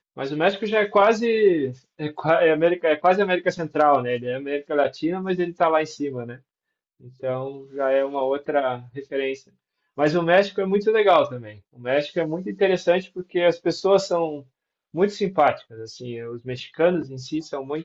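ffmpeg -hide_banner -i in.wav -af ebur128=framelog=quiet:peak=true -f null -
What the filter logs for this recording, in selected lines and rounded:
Integrated loudness:
  I:         -22.1 LUFS
  Threshold: -32.8 LUFS
Loudness range:
  LRA:         6.0 LU
  Threshold: -42.9 LUFS
  LRA low:   -26.4 LUFS
  LRA high:  -20.3 LUFS
True peak:
  Peak:       -5.5 dBFS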